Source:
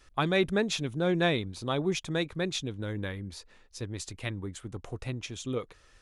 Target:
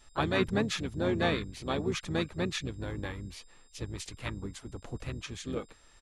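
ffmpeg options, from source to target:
-filter_complex "[0:a]aeval=exprs='val(0)+0.000794*sin(2*PI*7500*n/s)':c=same,asplit=4[s0][s1][s2][s3];[s1]asetrate=22050,aresample=44100,atempo=2,volume=0.501[s4];[s2]asetrate=29433,aresample=44100,atempo=1.49831,volume=0.447[s5];[s3]asetrate=52444,aresample=44100,atempo=0.840896,volume=0.251[s6];[s0][s4][s5][s6]amix=inputs=4:normalize=0,volume=0.668"

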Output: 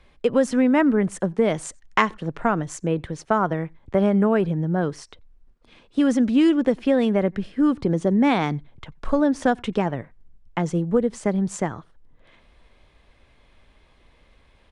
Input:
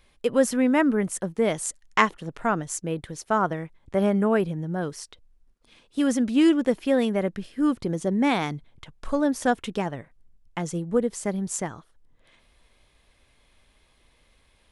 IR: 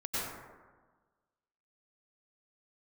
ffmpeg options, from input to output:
-filter_complex "[0:a]aresample=22050,aresample=44100,aemphasis=mode=reproduction:type=75kf,asplit=2[s0][s1];[1:a]atrim=start_sample=2205,atrim=end_sample=3969[s2];[s1][s2]afir=irnorm=-1:irlink=0,volume=0.224[s3];[s0][s3]amix=inputs=2:normalize=0,acrossover=split=130|3000[s4][s5][s6];[s5]acompressor=threshold=0.0794:ratio=3[s7];[s4][s7][s6]amix=inputs=3:normalize=0,volume=1.88"

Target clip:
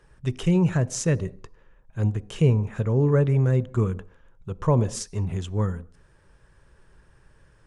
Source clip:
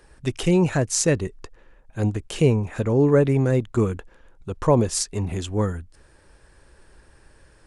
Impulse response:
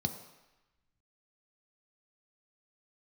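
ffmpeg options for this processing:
-filter_complex "[0:a]highshelf=f=6700:g=-8.5,asplit=2[s0][s1];[1:a]atrim=start_sample=2205,afade=t=out:st=0.27:d=0.01,atrim=end_sample=12348[s2];[s1][s2]afir=irnorm=-1:irlink=0,volume=0.168[s3];[s0][s3]amix=inputs=2:normalize=0,volume=0.668"

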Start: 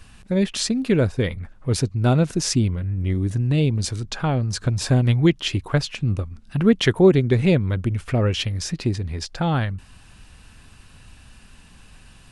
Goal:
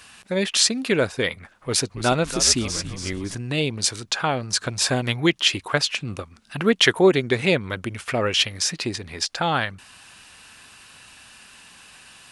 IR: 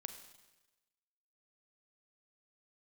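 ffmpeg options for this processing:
-filter_complex "[0:a]highpass=f=980:p=1,asettb=1/sr,asplit=3[s0][s1][s2];[s0]atrim=end=1.344[s3];[s1]atrim=start=1.34:end=3.35,asetpts=PTS-STARTPTS,afade=t=in:d=0.004:c=qsin,afade=t=out:st=2.006:d=0.004:c=qsin,asplit=6[s4][s5][s6][s7][s8][s9];[s5]adelay=282,afreqshift=-89,volume=0.282[s10];[s6]adelay=564,afreqshift=-178,volume=0.138[s11];[s7]adelay=846,afreqshift=-267,volume=0.0676[s12];[s8]adelay=1128,afreqshift=-356,volume=0.0331[s13];[s9]adelay=1410,afreqshift=-445,volume=0.0162[s14];[s4][s10][s11][s12][s13][s14]amix=inputs=6:normalize=0,atrim=end_sample=88641[s15];[s2]atrim=start=3.346[s16];[s3][s15]acrossfade=d=0.004:c1=hsin:c2=qsin[s17];[s17][s16]acrossfade=d=0.004:c1=qsin:c2=hsin,volume=2.37"

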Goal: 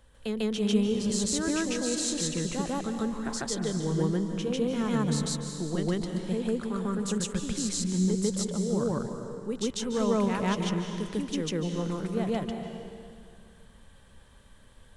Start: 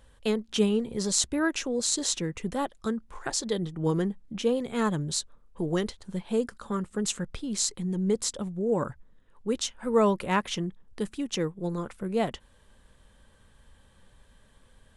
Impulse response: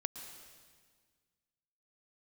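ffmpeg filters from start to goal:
-filter_complex "[0:a]aeval=exprs='0.501*(cos(1*acos(clip(val(0)/0.501,-1,1)))-cos(1*PI/2))+0.0178*(cos(5*acos(clip(val(0)/0.501,-1,1)))-cos(5*PI/2))':c=same,acrossover=split=250[s0][s1];[s1]acompressor=threshold=0.0112:ratio=1.5[s2];[s0][s2]amix=inputs=2:normalize=0,asplit=2[s3][s4];[1:a]atrim=start_sample=2205,asetrate=33957,aresample=44100,adelay=147[s5];[s4][s5]afir=irnorm=-1:irlink=0,volume=1.41[s6];[s3][s6]amix=inputs=2:normalize=0,volume=0.668"

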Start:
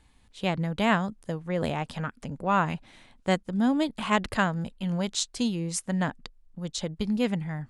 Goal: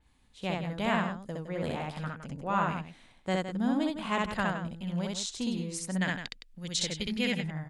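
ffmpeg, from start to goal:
-filter_complex "[0:a]asettb=1/sr,asplit=3[s0][s1][s2];[s0]atrim=end=6.014[s3];[s1]atrim=start=6.01:end=7.34,asetpts=PTS-STARTPTS,afade=t=in:d=0.004:c=qsin,afade=t=out:st=1.326:d=0.004:c=qsin,highshelf=f=1500:t=q:w=1.5:g=9[s4];[s2]atrim=start=7.336[s5];[s3][s4]acrossfade=d=0.004:c1=hsin:c2=qsin[s6];[s6][s5]acrossfade=d=0.004:c1=qsin:c2=hsin,asplit=2[s7][s8];[s8]aecho=0:1:64.14|163.3:0.891|0.355[s9];[s7][s9]amix=inputs=2:normalize=0,adynamicequalizer=threshold=0.01:dfrequency=4600:dqfactor=0.7:tfrequency=4600:tqfactor=0.7:attack=5:release=100:ratio=0.375:range=2:mode=cutabove:tftype=highshelf,volume=0.447"

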